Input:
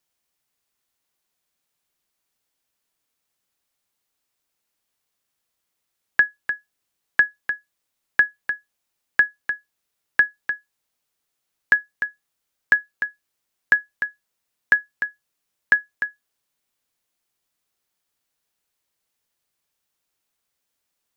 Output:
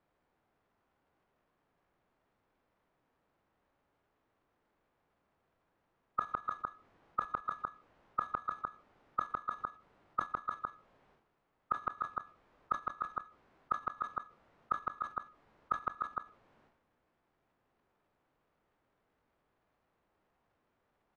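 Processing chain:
one scale factor per block 3 bits
low-pass filter 1,500 Hz 12 dB per octave
downward compressor 5 to 1, threshold −24 dBFS, peak gain reduction 8.5 dB
slap from a distant wall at 27 metres, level −7 dB
formants moved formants −5 semitones
gate with flip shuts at −22 dBFS, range −26 dB
transient designer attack −6 dB, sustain +11 dB
level +9.5 dB

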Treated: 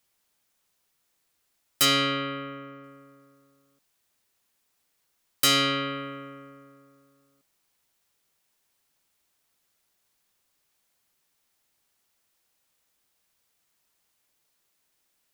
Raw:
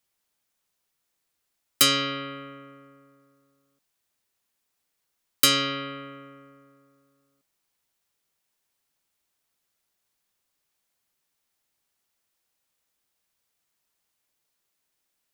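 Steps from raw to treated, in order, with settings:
0:01.85–0:02.84: parametric band 9,500 Hz −11.5 dB 0.77 octaves
soft clipping −21 dBFS, distortion −7 dB
level +4.5 dB

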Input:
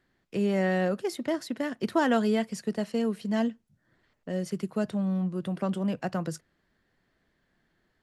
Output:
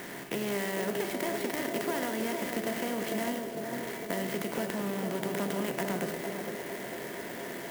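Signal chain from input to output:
compressor on every frequency bin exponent 0.4
flat-topped bell 4,400 Hz +11 dB 2.8 octaves
downward compressor, threshold −25 dBFS, peak gain reduction 10 dB
high-frequency loss of the air 210 metres
tuned comb filter 130 Hz, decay 0.76 s, harmonics odd, mix 80%
feedback echo with a band-pass in the loop 471 ms, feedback 71%, band-pass 440 Hz, level −4 dB
on a send at −9.5 dB: convolution reverb RT60 0.80 s, pre-delay 79 ms
on the sum: wrong playback speed 24 fps film run at 25 fps
converter with an unsteady clock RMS 0.049 ms
level +8.5 dB

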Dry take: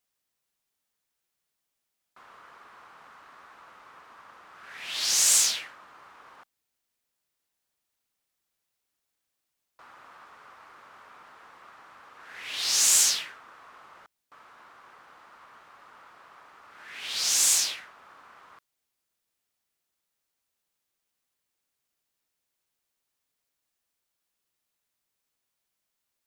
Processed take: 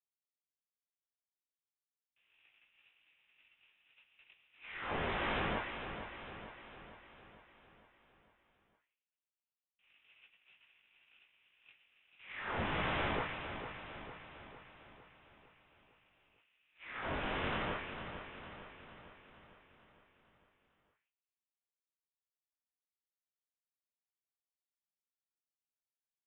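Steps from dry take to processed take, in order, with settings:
noise gate −48 dBFS, range −22 dB
chorus effect 0.37 Hz, delay 17.5 ms, depth 3.2 ms
on a send: repeating echo 454 ms, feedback 56%, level −9 dB
on the sum: voice inversion scrambler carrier 3,800 Hz
level +1 dB

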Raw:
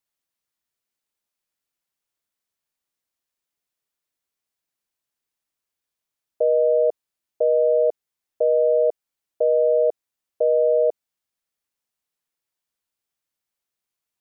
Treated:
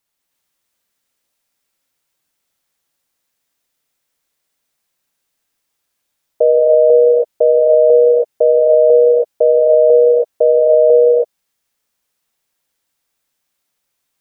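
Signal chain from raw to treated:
reverb whose tail is shaped and stops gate 350 ms rising, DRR −2 dB
level +8.5 dB

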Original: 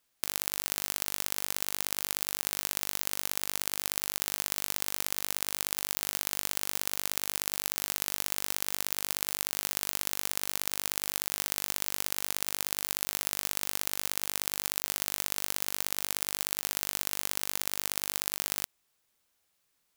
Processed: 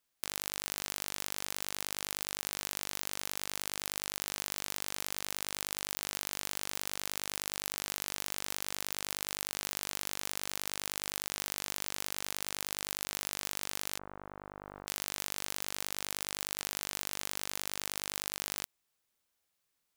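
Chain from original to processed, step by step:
stylus tracing distortion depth 0.064 ms
0:13.99–0:14.87: low-pass filter 1,300 Hz 24 dB per octave
level −6 dB

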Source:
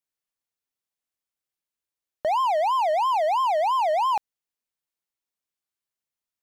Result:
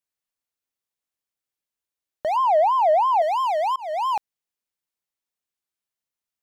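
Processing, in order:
0:02.36–0:03.22: tilt shelving filter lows +9 dB, about 1,400 Hz
0:03.76–0:04.16: fade in equal-power

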